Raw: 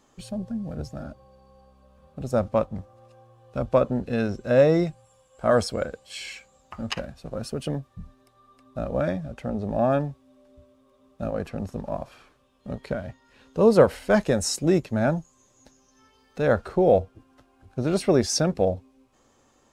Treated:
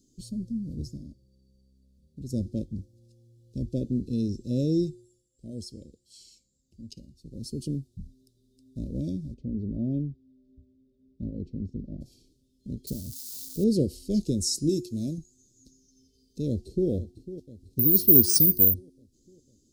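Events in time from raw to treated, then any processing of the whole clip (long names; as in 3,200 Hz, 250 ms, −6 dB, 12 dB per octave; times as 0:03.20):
0:00.97–0:02.29: clip gain −4.5 dB
0:04.85–0:07.58: duck −10 dB, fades 0.44 s
0:09.34–0:12.01: head-to-tape spacing loss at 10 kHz 32 dB
0:12.87–0:13.64: spike at every zero crossing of −27.5 dBFS
0:14.69–0:15.18: spectral tilt +2 dB per octave
0:16.47–0:16.89: delay throw 500 ms, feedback 60%, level −14 dB
0:17.79–0:18.74: bad sample-rate conversion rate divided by 3×, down filtered, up zero stuff
whole clip: elliptic band-stop filter 340–4,500 Hz, stop band 70 dB; hum removal 358.9 Hz, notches 30; dynamic equaliser 170 Hz, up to −3 dB, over −43 dBFS, Q 6.4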